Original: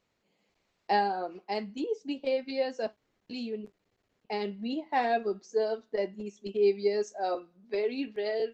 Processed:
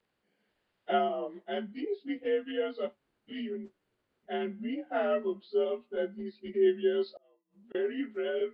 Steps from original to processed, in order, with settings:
partials spread apart or drawn together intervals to 87%
0:07.07–0:07.75: gate with flip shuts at −37 dBFS, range −35 dB

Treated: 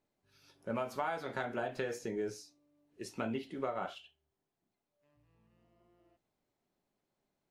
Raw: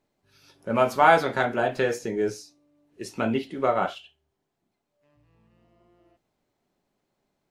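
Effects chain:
downward compressor 12 to 1, threshold −24 dBFS, peak gain reduction 13.5 dB
level −8 dB

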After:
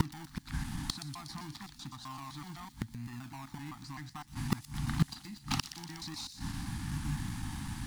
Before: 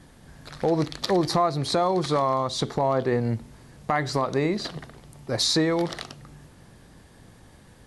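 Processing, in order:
slices reordered back to front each 128 ms, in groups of 7
in parallel at −5 dB: sample-and-hold swept by an LFO 27×, swing 60% 0.89 Hz
on the sum: soft clipping −16.5 dBFS, distortion −14 dB
elliptic band-stop filter 290–820 Hz, stop band 50 dB
gate with flip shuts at −25 dBFS, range −27 dB
on a send: delay with a high-pass on its return 121 ms, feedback 69%, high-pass 4,600 Hz, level −7 dB
on the sum: level +10 dB

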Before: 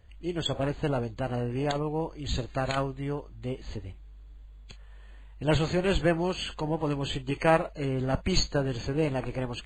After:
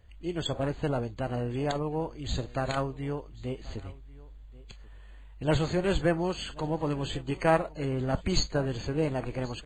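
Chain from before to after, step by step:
dynamic equaliser 2,700 Hz, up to −4 dB, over −45 dBFS, Q 2
on a send: single-tap delay 1,085 ms −22 dB
on the sum: level −1 dB

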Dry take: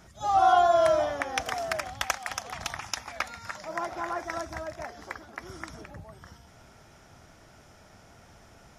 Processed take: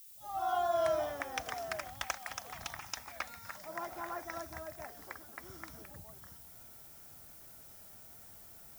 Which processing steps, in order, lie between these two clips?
fade in at the beginning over 0.87 s
background noise violet −46 dBFS
level −8.5 dB

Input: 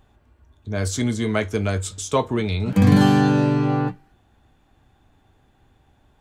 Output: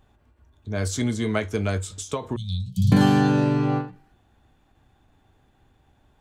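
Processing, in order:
0:02.36–0:02.92: Chebyshev band-stop filter 180–3,300 Hz, order 5
every ending faded ahead of time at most 150 dB per second
level −2 dB

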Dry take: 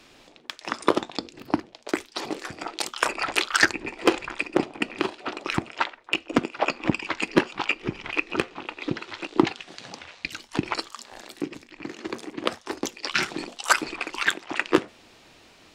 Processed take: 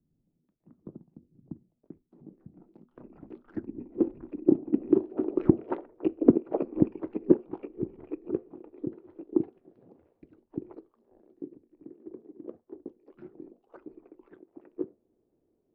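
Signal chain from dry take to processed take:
source passing by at 0:05.58, 6 m/s, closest 4.2 metres
low-pass filter sweep 170 Hz → 390 Hz, 0:01.95–0:05.67
level +3 dB

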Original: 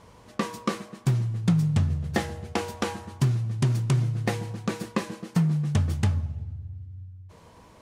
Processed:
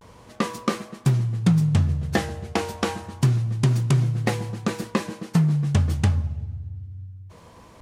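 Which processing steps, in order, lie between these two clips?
pitch vibrato 0.3 Hz 43 cents
level +3.5 dB

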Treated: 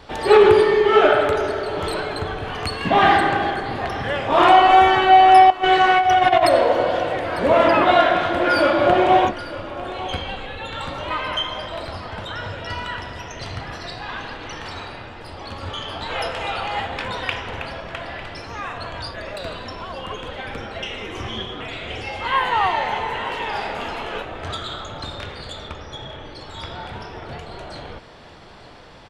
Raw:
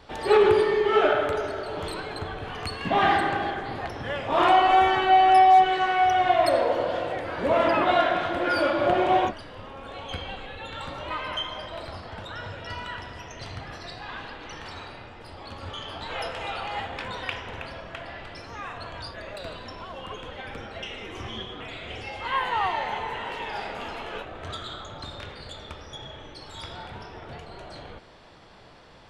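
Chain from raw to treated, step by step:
0:05.50–0:06.50: compressor whose output falls as the input rises −22 dBFS, ratio −0.5
0:25.68–0:26.86: high-shelf EQ 6,700 Hz −11.5 dB
on a send: single-tap delay 900 ms −16.5 dB
on the sum: level +6.5 dB

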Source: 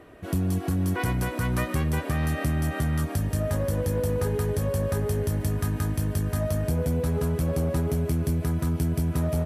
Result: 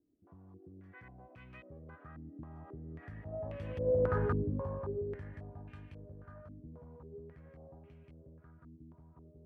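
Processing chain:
source passing by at 0:04.23, 8 m/s, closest 1.6 metres
low-pass on a step sequencer 3.7 Hz 290–2,600 Hz
level −6 dB

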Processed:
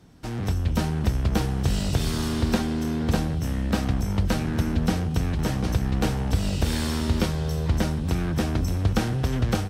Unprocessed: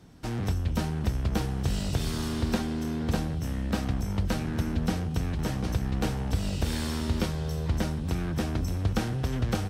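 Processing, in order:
automatic gain control gain up to 4.5 dB

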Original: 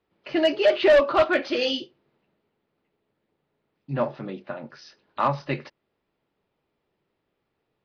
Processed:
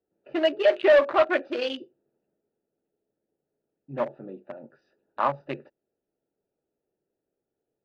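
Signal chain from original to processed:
adaptive Wiener filter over 41 samples
bass and treble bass −12 dB, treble −8 dB

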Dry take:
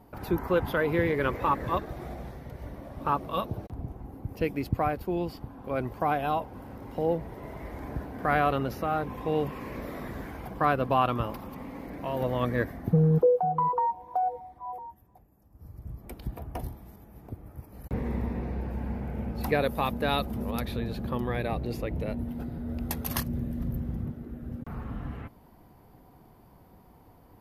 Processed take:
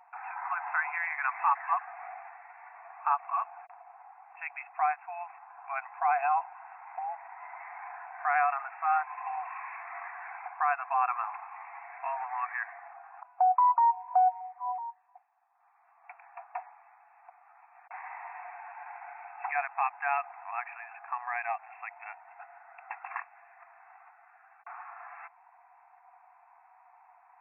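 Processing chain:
brickwall limiter −18.5 dBFS, peak gain reduction 7.5 dB
linear-phase brick-wall band-pass 680–2,700 Hz
every ending faded ahead of time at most 540 dB per second
level +4 dB

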